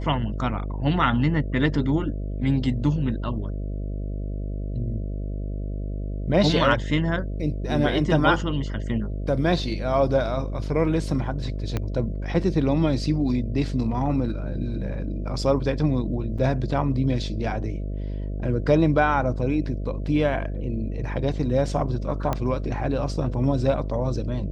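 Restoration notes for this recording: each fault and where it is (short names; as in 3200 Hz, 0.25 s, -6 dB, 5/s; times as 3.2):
buzz 50 Hz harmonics 13 -29 dBFS
11.77 pop -13 dBFS
16.38–16.39 gap 5.3 ms
22.33 pop -12 dBFS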